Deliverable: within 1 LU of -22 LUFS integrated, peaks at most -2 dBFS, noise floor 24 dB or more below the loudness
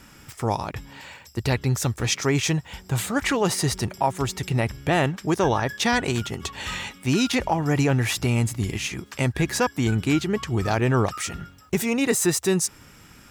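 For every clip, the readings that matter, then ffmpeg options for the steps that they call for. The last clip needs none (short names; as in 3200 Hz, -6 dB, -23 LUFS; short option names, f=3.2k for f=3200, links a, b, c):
loudness -24.0 LUFS; peak -8.5 dBFS; loudness target -22.0 LUFS
-> -af "volume=2dB"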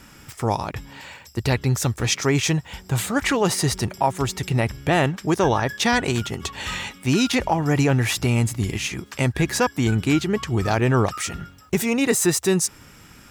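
loudness -22.0 LUFS; peak -6.5 dBFS; noise floor -48 dBFS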